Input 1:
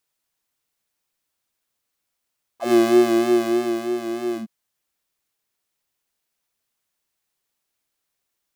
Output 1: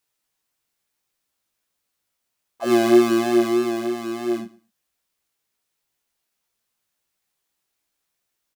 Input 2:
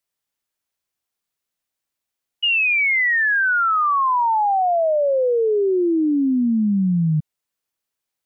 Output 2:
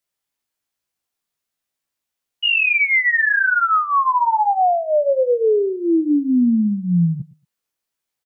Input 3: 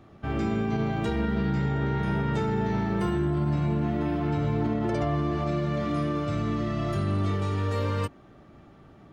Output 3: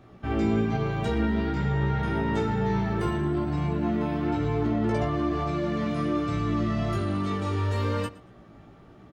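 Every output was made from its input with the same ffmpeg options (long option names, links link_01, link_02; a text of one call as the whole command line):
ffmpeg -i in.wav -af "flanger=delay=16:depth=2.3:speed=1.1,aecho=1:1:115|230:0.0944|0.017,volume=4dB" out.wav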